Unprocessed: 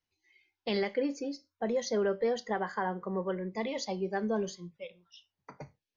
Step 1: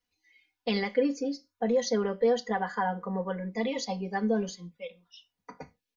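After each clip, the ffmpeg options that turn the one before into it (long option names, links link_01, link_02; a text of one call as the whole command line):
ffmpeg -i in.wav -af "aecho=1:1:4.1:0.99" out.wav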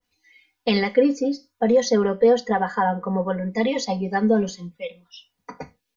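ffmpeg -i in.wav -af "adynamicequalizer=threshold=0.00631:dfrequency=1600:dqfactor=0.7:tfrequency=1600:tqfactor=0.7:attack=5:release=100:ratio=0.375:range=2.5:mode=cutabove:tftype=highshelf,volume=8.5dB" out.wav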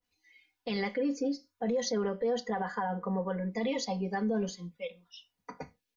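ffmpeg -i in.wav -af "alimiter=limit=-16.5dB:level=0:latency=1:release=39,volume=-7dB" out.wav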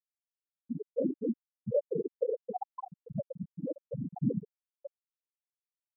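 ffmpeg -i in.wav -af "afftfilt=real='hypot(re,im)*cos(2*PI*random(0))':imag='hypot(re,im)*sin(2*PI*random(1))':win_size=512:overlap=0.75,afftfilt=real='re*gte(hypot(re,im),0.112)':imag='im*gte(hypot(re,im),0.112)':win_size=1024:overlap=0.75,volume=7.5dB" out.wav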